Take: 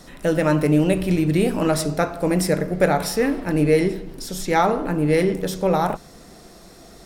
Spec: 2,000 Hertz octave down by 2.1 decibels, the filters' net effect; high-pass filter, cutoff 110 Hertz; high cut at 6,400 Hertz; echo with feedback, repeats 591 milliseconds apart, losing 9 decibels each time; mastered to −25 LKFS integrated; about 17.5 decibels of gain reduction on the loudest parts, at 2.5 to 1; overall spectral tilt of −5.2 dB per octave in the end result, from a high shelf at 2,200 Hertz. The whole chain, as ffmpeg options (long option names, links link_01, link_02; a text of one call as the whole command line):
ffmpeg -i in.wav -af "highpass=110,lowpass=6400,equalizer=frequency=2000:width_type=o:gain=-6,highshelf=frequency=2200:gain=6.5,acompressor=threshold=-40dB:ratio=2.5,aecho=1:1:591|1182|1773|2364:0.355|0.124|0.0435|0.0152,volume=11dB" out.wav